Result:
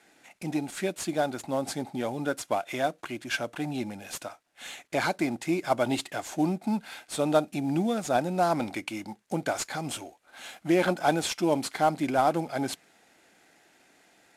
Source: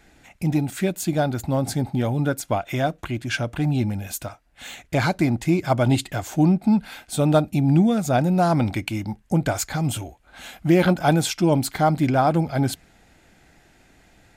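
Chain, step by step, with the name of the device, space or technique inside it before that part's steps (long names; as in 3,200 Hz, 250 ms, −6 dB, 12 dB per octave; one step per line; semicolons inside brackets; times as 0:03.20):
early wireless headset (high-pass filter 300 Hz 12 dB per octave; variable-slope delta modulation 64 kbit/s)
level −3.5 dB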